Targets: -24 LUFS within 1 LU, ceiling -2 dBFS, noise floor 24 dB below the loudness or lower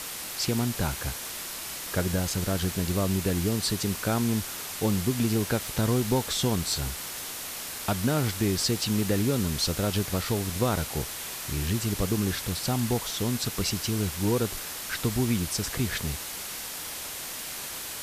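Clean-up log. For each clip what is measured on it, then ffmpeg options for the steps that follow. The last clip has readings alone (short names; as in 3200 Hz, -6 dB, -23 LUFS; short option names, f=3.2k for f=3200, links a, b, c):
noise floor -37 dBFS; noise floor target -52 dBFS; loudness -28.0 LUFS; peak -13.0 dBFS; loudness target -24.0 LUFS
-> -af "afftdn=nr=15:nf=-37"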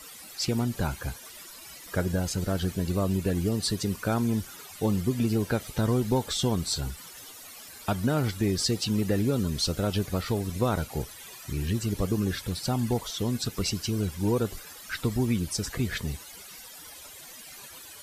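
noise floor -46 dBFS; noise floor target -53 dBFS
-> -af "afftdn=nr=7:nf=-46"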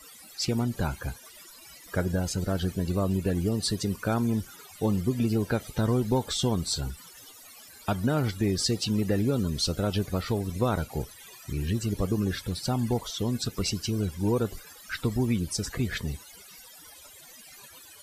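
noise floor -50 dBFS; noise floor target -53 dBFS
-> -af "afftdn=nr=6:nf=-50"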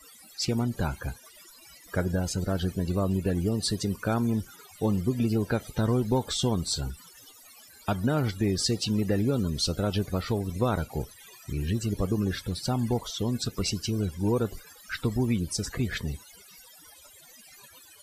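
noise floor -53 dBFS; loudness -29.0 LUFS; peak -13.5 dBFS; loudness target -24.0 LUFS
-> -af "volume=5dB"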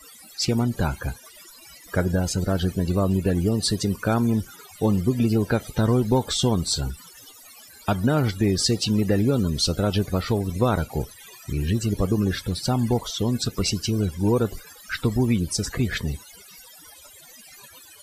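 loudness -24.0 LUFS; peak -8.5 dBFS; noise floor -48 dBFS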